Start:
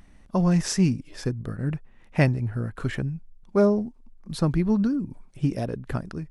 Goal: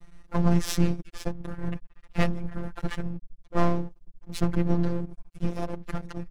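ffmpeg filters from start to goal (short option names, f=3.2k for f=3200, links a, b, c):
-filter_complex "[0:a]asplit=4[a][b][c][d];[b]asetrate=22050,aresample=44100,atempo=2,volume=-9dB[e];[c]asetrate=29433,aresample=44100,atempo=1.49831,volume=-4dB[f];[d]asetrate=58866,aresample=44100,atempo=0.749154,volume=-14dB[g];[a][e][f][g]amix=inputs=4:normalize=0,aeval=exprs='max(val(0),0)':c=same,afftfilt=real='hypot(re,im)*cos(PI*b)':imag='0':win_size=1024:overlap=0.75,volume=3dB"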